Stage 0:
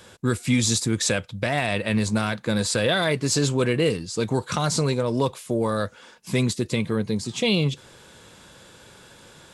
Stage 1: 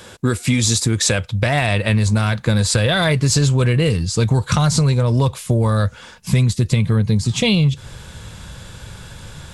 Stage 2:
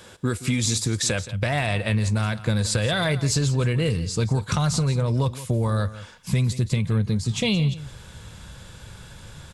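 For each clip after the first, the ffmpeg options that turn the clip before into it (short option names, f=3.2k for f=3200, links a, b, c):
-af "asubboost=boost=8.5:cutoff=110,acompressor=threshold=-21dB:ratio=6,volume=8.5dB"
-af "aecho=1:1:172:0.168,volume=-6.5dB"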